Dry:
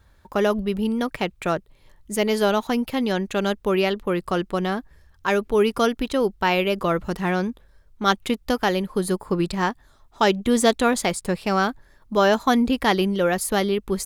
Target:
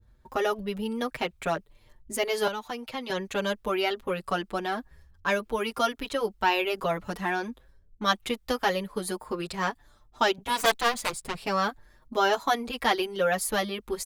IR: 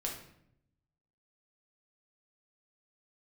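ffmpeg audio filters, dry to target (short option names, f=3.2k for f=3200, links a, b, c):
-filter_complex "[0:a]asettb=1/sr,asplit=3[a][b][c];[a]atrim=end=10.384[d];[b]atrim=start=10.38:end=11.37,asetpts=PTS-STARTPTS,afade=t=in:d=0.004:c=qsin,afade=t=out:st=0.986:d=0.004:c=qsin,aeval=exprs='0.631*(cos(1*acos(clip(val(0)/0.631,-1,1)))-cos(1*PI/2))+0.158*(cos(7*acos(clip(val(0)/0.631,-1,1)))-cos(7*PI/2))':c=same[e];[c]atrim=start=11.366[f];[d][e]acrossfade=d=0.004:c1=hsin:c2=qsin[g];[g][f]acrossfade=d=0.004:c1=qsin:c2=hsin,acrossover=split=450[h][i];[h]acompressor=threshold=-32dB:ratio=6[j];[i]agate=range=-33dB:threshold=-58dB:ratio=3:detection=peak[k];[j][k]amix=inputs=2:normalize=0,asettb=1/sr,asplit=3[l][m][n];[l]atrim=end=2.474[o];[m]atrim=start=2.47:end=3.1,asetpts=PTS-STARTPTS,afade=t=in:d=0.004:c=qsin,afade=t=out:st=0.626:d=0.004:c=qsin,acrossover=split=300|690|7900[p][q][r][s];[p]acompressor=threshold=-43dB:ratio=4[t];[q]acompressor=threshold=-38dB:ratio=4[u];[r]acompressor=threshold=-31dB:ratio=4[v];[s]acompressor=threshold=-58dB:ratio=4[w];[t][u][v][w]amix=inputs=4:normalize=0[x];[n]atrim=start=3.096[y];[o][x]acrossfade=d=0.004:c1=hsin:c2=qsin[z];[z][y]acrossfade=d=0.004:c1=qsin:c2=hsin,asplit=2[aa][ab];[ab]adelay=6.3,afreqshift=1.1[ac];[aa][ac]amix=inputs=2:normalize=1"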